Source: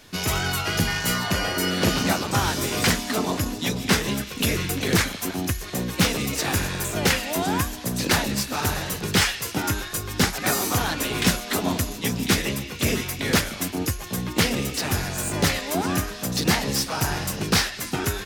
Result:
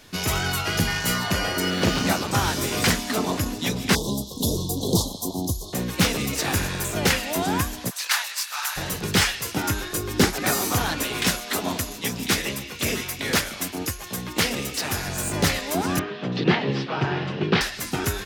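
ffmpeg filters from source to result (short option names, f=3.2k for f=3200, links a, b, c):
-filter_complex "[0:a]asettb=1/sr,asplit=3[a][b][c];[a]atrim=end=1.604[d];[b]atrim=start=1.6:end=2.03,asetpts=PTS-STARTPTS,afade=t=in:d=0.004:c=qsin,afade=t=out:st=0.426:d=0.004:c=qsin,adynamicsmooth=sensitivity=7.5:basefreq=2.5k[e];[c]atrim=start=2.026[f];[d][e]acrossfade=d=0.004:c1=hsin:c2=qsin[g];[g][f]acrossfade=d=0.004:c1=qsin:c2=hsin,asettb=1/sr,asplit=3[h][i][j];[h]atrim=end=3.954[k];[i]atrim=start=3.95:end=5.73,asetpts=PTS-STARTPTS,afade=t=in:d=0.004:c=qsin,afade=t=out:st=1.776:d=0.004:c=qsin,asuperstop=centerf=1900:order=12:qfactor=0.79[l];[j]atrim=start=5.726[m];[k][l]acrossfade=d=0.004:c1=hsin:c2=qsin[n];[n][m]acrossfade=d=0.004:c1=qsin:c2=hsin,asplit=3[o][p][q];[o]afade=t=out:st=7.89:d=0.02[r];[p]highpass=f=1k:w=0.5412,highpass=f=1k:w=1.3066,afade=t=in:st=7.89:d=0.02,afade=t=out:st=8.76:d=0.02[s];[q]afade=t=in:st=8.76:d=0.02[t];[r][s][t]amix=inputs=3:normalize=0,asettb=1/sr,asplit=3[u][v][w];[u]atrim=end=9.824[x];[v]atrim=start=9.82:end=10.45,asetpts=PTS-STARTPTS,afade=t=in:d=0.004:c=qsin,afade=t=out:st=0.626:d=0.004:c=qsin,equalizer=f=350:t=o:w=0.93:g=8.5[y];[w]atrim=start=10.446[z];[x][y]acrossfade=d=0.004:c1=hsin:c2=qsin[aa];[aa][z]acrossfade=d=0.004:c1=qsin:c2=hsin,asettb=1/sr,asplit=3[ab][ac][ad];[ab]atrim=end=11.044[ae];[ac]atrim=start=11.04:end=15.06,asetpts=PTS-STARTPTS,afade=t=in:d=0.004:c=qsin,afade=t=out:st=4.016:d=0.004:c=qsin,lowshelf=f=330:g=-6.5[af];[ad]atrim=start=15.056[ag];[ae][af]acrossfade=d=0.004:c1=hsin:c2=qsin[ah];[ah][ag]acrossfade=d=0.004:c1=qsin:c2=hsin,asettb=1/sr,asplit=3[ai][aj][ak];[ai]atrim=end=15.994[al];[aj]atrim=start=15.99:end=17.61,asetpts=PTS-STARTPTS,afade=t=in:d=0.004:c=qsin,afade=t=out:st=1.616:d=0.004:c=qsin,highpass=f=120:w=0.5412,highpass=f=120:w=1.3066,equalizer=f=140:t=q:w=4:g=6,equalizer=f=380:t=q:w=4:g=9,equalizer=f=3.1k:t=q:w=4:g=3,lowpass=f=3.5k:w=0.5412,lowpass=f=3.5k:w=1.3066[am];[ak]atrim=start=17.606[an];[al][am]acrossfade=d=0.004:c1=hsin:c2=qsin[ao];[ao][an]acrossfade=d=0.004:c1=qsin:c2=hsin"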